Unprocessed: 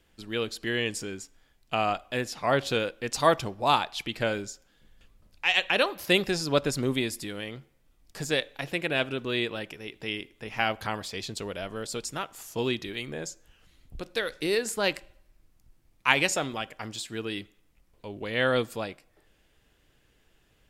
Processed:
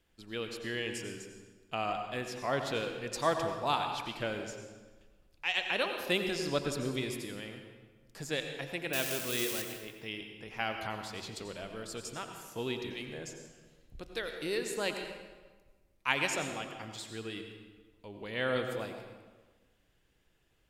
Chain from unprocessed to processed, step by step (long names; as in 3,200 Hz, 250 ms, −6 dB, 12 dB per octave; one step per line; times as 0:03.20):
0:08.93–0:09.62: spike at every zero crossing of −16.5 dBFS
convolution reverb RT60 1.4 s, pre-delay 82 ms, DRR 5 dB
level −8 dB